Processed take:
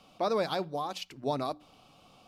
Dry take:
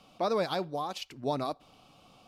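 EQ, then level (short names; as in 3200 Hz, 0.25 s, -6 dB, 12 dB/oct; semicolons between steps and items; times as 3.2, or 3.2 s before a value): notches 60/120/180/240/300 Hz; 0.0 dB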